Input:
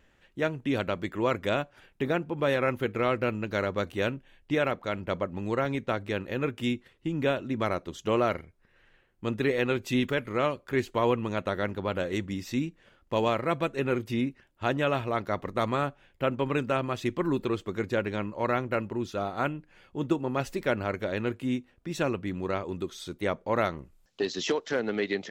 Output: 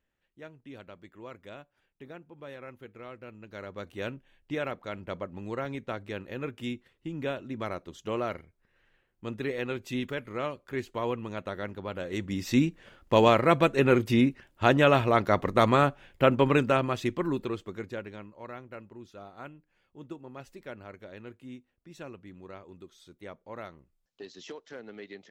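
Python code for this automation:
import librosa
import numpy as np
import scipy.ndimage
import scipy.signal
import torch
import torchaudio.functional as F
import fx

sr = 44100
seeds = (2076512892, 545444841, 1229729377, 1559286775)

y = fx.gain(x, sr, db=fx.line((3.26, -18.0), (4.09, -6.0), (12.0, -6.0), (12.56, 6.0), (16.43, 6.0), (17.73, -6.0), (18.39, -15.0)))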